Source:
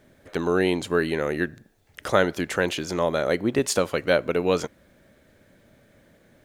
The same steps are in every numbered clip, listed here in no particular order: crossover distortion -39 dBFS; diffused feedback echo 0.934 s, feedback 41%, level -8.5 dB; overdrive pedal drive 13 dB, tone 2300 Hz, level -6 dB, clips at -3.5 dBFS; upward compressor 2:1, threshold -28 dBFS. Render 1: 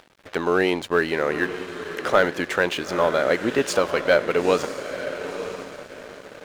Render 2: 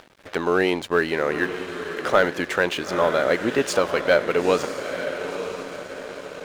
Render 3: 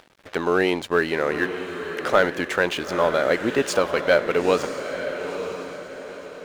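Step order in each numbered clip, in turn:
overdrive pedal > upward compressor > diffused feedback echo > crossover distortion; diffused feedback echo > upward compressor > overdrive pedal > crossover distortion; overdrive pedal > upward compressor > crossover distortion > diffused feedback echo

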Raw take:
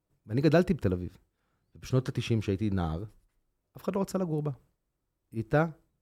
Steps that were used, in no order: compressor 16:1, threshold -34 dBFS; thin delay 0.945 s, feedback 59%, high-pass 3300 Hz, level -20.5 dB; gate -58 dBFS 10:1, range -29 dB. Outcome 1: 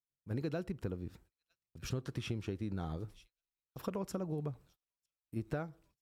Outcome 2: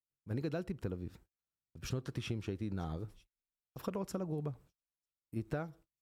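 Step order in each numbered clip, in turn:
thin delay > gate > compressor; compressor > thin delay > gate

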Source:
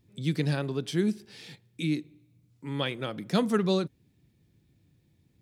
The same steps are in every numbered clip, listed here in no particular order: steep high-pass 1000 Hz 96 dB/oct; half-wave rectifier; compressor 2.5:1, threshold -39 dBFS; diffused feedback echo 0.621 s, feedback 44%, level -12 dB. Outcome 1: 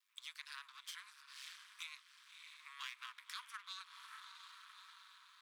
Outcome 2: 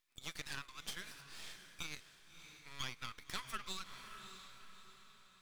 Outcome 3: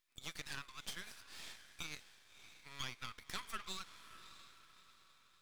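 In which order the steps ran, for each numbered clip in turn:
diffused feedback echo > compressor > half-wave rectifier > steep high-pass; steep high-pass > half-wave rectifier > diffused feedback echo > compressor; steep high-pass > compressor > diffused feedback echo > half-wave rectifier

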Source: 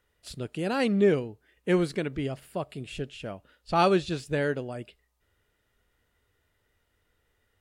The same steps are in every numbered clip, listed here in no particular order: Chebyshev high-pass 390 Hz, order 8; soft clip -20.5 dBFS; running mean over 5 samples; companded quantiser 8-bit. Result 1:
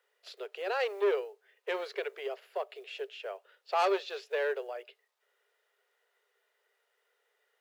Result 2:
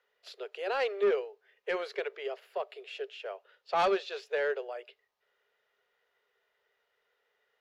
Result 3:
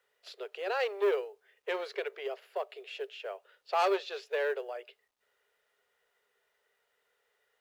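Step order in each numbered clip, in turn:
running mean > companded quantiser > soft clip > Chebyshev high-pass; Chebyshev high-pass > companded quantiser > running mean > soft clip; running mean > soft clip > Chebyshev high-pass > companded quantiser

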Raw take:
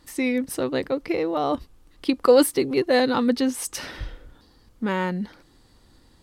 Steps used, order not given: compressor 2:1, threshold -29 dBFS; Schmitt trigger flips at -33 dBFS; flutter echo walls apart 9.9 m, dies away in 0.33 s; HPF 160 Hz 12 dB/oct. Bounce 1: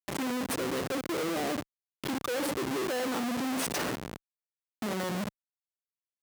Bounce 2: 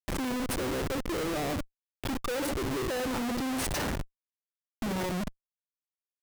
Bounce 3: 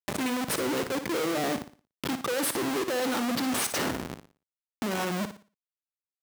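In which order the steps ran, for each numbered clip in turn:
flutter echo > compressor > Schmitt trigger > HPF; flutter echo > compressor > HPF > Schmitt trigger; Schmitt trigger > flutter echo > compressor > HPF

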